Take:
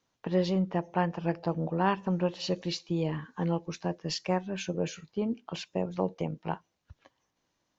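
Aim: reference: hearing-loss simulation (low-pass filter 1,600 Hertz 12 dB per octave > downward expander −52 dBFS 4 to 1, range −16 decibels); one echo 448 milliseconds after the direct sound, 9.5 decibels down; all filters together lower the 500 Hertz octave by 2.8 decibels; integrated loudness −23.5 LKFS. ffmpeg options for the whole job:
ffmpeg -i in.wav -af "lowpass=1600,equalizer=frequency=500:width_type=o:gain=-3.5,aecho=1:1:448:0.335,agate=range=-16dB:threshold=-52dB:ratio=4,volume=9.5dB" out.wav

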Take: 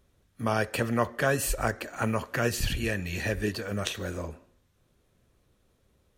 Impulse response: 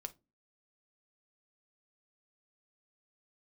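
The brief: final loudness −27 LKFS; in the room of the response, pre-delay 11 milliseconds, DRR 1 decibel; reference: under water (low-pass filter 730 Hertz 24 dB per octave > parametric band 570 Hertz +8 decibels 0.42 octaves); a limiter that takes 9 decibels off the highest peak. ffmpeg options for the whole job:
-filter_complex "[0:a]alimiter=limit=-16.5dB:level=0:latency=1,asplit=2[link_01][link_02];[1:a]atrim=start_sample=2205,adelay=11[link_03];[link_02][link_03]afir=irnorm=-1:irlink=0,volume=2.5dB[link_04];[link_01][link_04]amix=inputs=2:normalize=0,lowpass=frequency=730:width=0.5412,lowpass=frequency=730:width=1.3066,equalizer=frequency=570:width_type=o:width=0.42:gain=8,volume=0.5dB"

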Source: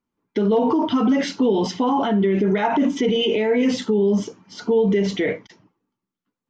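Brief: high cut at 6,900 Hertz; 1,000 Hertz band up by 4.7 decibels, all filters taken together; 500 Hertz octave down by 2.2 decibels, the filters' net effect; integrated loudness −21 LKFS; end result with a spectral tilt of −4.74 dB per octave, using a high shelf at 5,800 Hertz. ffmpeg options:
ffmpeg -i in.wav -af "lowpass=6900,equalizer=frequency=500:width_type=o:gain=-4,equalizer=frequency=1000:width_type=o:gain=7,highshelf=frequency=5800:gain=-5.5,volume=-0.5dB" out.wav

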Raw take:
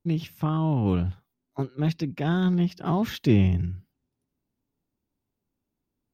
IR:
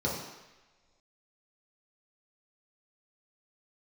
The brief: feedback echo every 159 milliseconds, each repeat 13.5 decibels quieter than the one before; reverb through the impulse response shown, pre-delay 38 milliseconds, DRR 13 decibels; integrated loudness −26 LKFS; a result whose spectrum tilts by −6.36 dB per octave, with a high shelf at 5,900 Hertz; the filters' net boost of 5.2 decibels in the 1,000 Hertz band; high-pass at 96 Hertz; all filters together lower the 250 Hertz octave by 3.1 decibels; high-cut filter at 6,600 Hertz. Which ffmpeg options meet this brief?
-filter_complex "[0:a]highpass=96,lowpass=6600,equalizer=frequency=250:width_type=o:gain=-5,equalizer=frequency=1000:width_type=o:gain=7,highshelf=frequency=5900:gain=-5,aecho=1:1:159|318:0.211|0.0444,asplit=2[link_01][link_02];[1:a]atrim=start_sample=2205,adelay=38[link_03];[link_02][link_03]afir=irnorm=-1:irlink=0,volume=-21.5dB[link_04];[link_01][link_04]amix=inputs=2:normalize=0,volume=0.5dB"

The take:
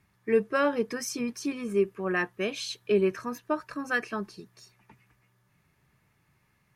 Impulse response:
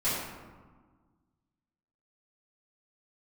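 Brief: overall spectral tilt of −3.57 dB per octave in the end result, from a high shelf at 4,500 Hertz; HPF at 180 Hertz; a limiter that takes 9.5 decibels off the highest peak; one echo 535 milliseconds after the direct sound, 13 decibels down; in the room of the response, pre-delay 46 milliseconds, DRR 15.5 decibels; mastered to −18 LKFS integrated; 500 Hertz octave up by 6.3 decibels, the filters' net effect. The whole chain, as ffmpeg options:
-filter_complex "[0:a]highpass=180,equalizer=frequency=500:width_type=o:gain=8,highshelf=frequency=4500:gain=4.5,alimiter=limit=-16.5dB:level=0:latency=1,aecho=1:1:535:0.224,asplit=2[link_01][link_02];[1:a]atrim=start_sample=2205,adelay=46[link_03];[link_02][link_03]afir=irnorm=-1:irlink=0,volume=-25.5dB[link_04];[link_01][link_04]amix=inputs=2:normalize=0,volume=10dB"

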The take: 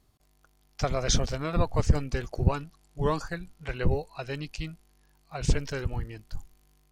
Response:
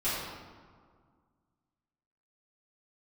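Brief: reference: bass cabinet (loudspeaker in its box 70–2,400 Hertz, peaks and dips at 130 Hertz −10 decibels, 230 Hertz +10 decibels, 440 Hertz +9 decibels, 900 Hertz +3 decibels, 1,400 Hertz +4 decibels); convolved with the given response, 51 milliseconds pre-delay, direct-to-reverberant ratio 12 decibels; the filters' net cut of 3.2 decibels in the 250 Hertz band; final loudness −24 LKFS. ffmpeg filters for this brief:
-filter_complex "[0:a]equalizer=frequency=250:width_type=o:gain=-9,asplit=2[link_01][link_02];[1:a]atrim=start_sample=2205,adelay=51[link_03];[link_02][link_03]afir=irnorm=-1:irlink=0,volume=-21dB[link_04];[link_01][link_04]amix=inputs=2:normalize=0,highpass=frequency=70:width=0.5412,highpass=frequency=70:width=1.3066,equalizer=frequency=130:width_type=q:width=4:gain=-10,equalizer=frequency=230:width_type=q:width=4:gain=10,equalizer=frequency=440:width_type=q:width=4:gain=9,equalizer=frequency=900:width_type=q:width=4:gain=3,equalizer=frequency=1400:width_type=q:width=4:gain=4,lowpass=frequency=2400:width=0.5412,lowpass=frequency=2400:width=1.3066,volume=7dB"

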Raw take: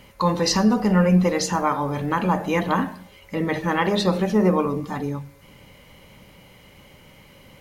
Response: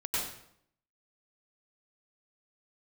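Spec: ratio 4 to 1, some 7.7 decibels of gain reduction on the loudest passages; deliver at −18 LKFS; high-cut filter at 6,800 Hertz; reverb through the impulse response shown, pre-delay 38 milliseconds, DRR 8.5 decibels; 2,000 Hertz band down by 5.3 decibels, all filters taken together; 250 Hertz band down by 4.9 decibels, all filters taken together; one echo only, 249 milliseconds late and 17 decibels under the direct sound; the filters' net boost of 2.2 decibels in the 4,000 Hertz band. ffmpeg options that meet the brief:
-filter_complex "[0:a]lowpass=6800,equalizer=frequency=250:width_type=o:gain=-7.5,equalizer=frequency=2000:width_type=o:gain=-7.5,equalizer=frequency=4000:width_type=o:gain=5,acompressor=threshold=-26dB:ratio=4,aecho=1:1:249:0.141,asplit=2[link_01][link_02];[1:a]atrim=start_sample=2205,adelay=38[link_03];[link_02][link_03]afir=irnorm=-1:irlink=0,volume=-15dB[link_04];[link_01][link_04]amix=inputs=2:normalize=0,volume=11dB"

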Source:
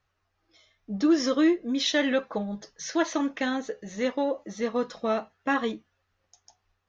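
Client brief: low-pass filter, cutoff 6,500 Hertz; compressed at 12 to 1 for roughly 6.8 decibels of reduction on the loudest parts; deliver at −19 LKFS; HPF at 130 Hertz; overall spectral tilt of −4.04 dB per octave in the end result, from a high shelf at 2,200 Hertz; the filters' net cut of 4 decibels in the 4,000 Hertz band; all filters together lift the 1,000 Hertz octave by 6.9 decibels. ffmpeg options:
ffmpeg -i in.wav -af "highpass=130,lowpass=6500,equalizer=frequency=1000:width_type=o:gain=8.5,highshelf=frequency=2200:gain=3.5,equalizer=frequency=4000:width_type=o:gain=-8,acompressor=threshold=-23dB:ratio=12,volume=11dB" out.wav

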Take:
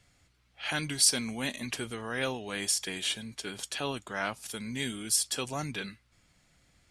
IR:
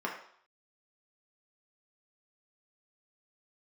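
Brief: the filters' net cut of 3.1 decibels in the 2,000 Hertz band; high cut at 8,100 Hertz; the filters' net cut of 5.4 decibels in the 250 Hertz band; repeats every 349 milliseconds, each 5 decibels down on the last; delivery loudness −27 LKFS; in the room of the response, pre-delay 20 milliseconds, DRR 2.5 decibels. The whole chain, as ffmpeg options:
-filter_complex "[0:a]lowpass=8100,equalizer=frequency=250:width_type=o:gain=-6.5,equalizer=frequency=2000:width_type=o:gain=-4,aecho=1:1:349|698|1047|1396|1745|2094|2443:0.562|0.315|0.176|0.0988|0.0553|0.031|0.0173,asplit=2[link_01][link_02];[1:a]atrim=start_sample=2205,adelay=20[link_03];[link_02][link_03]afir=irnorm=-1:irlink=0,volume=-9dB[link_04];[link_01][link_04]amix=inputs=2:normalize=0,volume=5dB"

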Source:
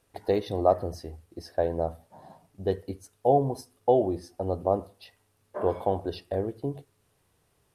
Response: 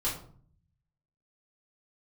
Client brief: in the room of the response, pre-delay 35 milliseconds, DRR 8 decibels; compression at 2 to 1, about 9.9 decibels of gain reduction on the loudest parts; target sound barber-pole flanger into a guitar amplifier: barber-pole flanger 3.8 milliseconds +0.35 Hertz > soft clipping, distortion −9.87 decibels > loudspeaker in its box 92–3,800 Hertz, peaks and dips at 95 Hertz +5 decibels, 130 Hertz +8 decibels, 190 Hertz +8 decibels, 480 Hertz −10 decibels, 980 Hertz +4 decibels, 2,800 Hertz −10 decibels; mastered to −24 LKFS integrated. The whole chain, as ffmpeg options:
-filter_complex "[0:a]acompressor=threshold=-34dB:ratio=2,asplit=2[link_01][link_02];[1:a]atrim=start_sample=2205,adelay=35[link_03];[link_02][link_03]afir=irnorm=-1:irlink=0,volume=-14dB[link_04];[link_01][link_04]amix=inputs=2:normalize=0,asplit=2[link_05][link_06];[link_06]adelay=3.8,afreqshift=0.35[link_07];[link_05][link_07]amix=inputs=2:normalize=1,asoftclip=threshold=-34dB,highpass=92,equalizer=frequency=95:width_type=q:width=4:gain=5,equalizer=frequency=130:width_type=q:width=4:gain=8,equalizer=frequency=190:width_type=q:width=4:gain=8,equalizer=frequency=480:width_type=q:width=4:gain=-10,equalizer=frequency=980:width_type=q:width=4:gain=4,equalizer=frequency=2800:width_type=q:width=4:gain=-10,lowpass=frequency=3800:width=0.5412,lowpass=frequency=3800:width=1.3066,volume=19dB"

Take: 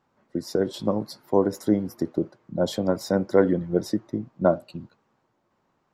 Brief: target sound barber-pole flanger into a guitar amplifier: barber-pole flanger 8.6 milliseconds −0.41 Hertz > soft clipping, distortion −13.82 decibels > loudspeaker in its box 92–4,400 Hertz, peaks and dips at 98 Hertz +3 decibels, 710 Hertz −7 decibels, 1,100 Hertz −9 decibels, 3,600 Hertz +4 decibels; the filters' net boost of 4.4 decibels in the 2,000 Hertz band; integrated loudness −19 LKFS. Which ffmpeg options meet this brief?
ffmpeg -i in.wav -filter_complex "[0:a]equalizer=frequency=2000:width_type=o:gain=8.5,asplit=2[link_01][link_02];[link_02]adelay=8.6,afreqshift=-0.41[link_03];[link_01][link_03]amix=inputs=2:normalize=1,asoftclip=threshold=-15.5dB,highpass=92,equalizer=frequency=98:width_type=q:width=4:gain=3,equalizer=frequency=710:width_type=q:width=4:gain=-7,equalizer=frequency=1100:width_type=q:width=4:gain=-9,equalizer=frequency=3600:width_type=q:width=4:gain=4,lowpass=frequency=4400:width=0.5412,lowpass=frequency=4400:width=1.3066,volume=12dB" out.wav

